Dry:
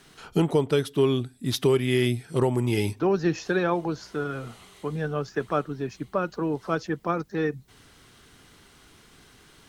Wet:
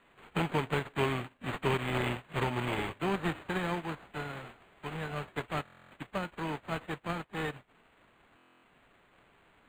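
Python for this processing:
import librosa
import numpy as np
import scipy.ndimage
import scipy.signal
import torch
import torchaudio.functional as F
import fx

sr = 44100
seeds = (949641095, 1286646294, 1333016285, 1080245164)

y = fx.envelope_flatten(x, sr, power=0.3)
y = fx.buffer_glitch(y, sr, at_s=(5.64, 8.36), block=1024, repeats=11)
y = np.interp(np.arange(len(y)), np.arange(len(y))[::8], y[::8])
y = F.gain(torch.from_numpy(y), -8.0).numpy()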